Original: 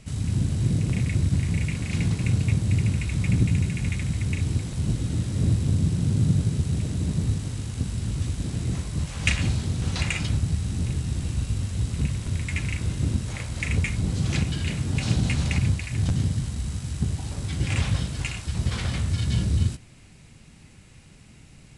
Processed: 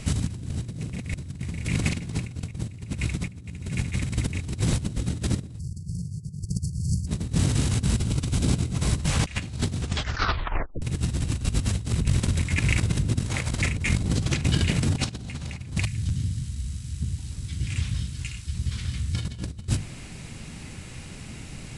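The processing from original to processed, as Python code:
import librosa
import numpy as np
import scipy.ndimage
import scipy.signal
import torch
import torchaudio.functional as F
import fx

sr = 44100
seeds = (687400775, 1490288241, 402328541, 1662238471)

y = fx.brickwall_bandstop(x, sr, low_hz=200.0, high_hz=4300.0, at=(5.58, 7.06), fade=0.02)
y = fx.notch(y, sr, hz=1800.0, q=9.2, at=(7.99, 8.82))
y = fx.over_compress(y, sr, threshold_db=-30.0, ratio=-0.5, at=(11.86, 14.95), fade=0.02)
y = fx.tone_stack(y, sr, knobs='6-0-2', at=(15.85, 19.15))
y = fx.edit(y, sr, fx.tape_stop(start_s=9.81, length_s=1.01), tone=tone)
y = fx.hum_notches(y, sr, base_hz=50, count=4)
y = fx.over_compress(y, sr, threshold_db=-31.0, ratio=-0.5)
y = y * 10.0 ** (5.5 / 20.0)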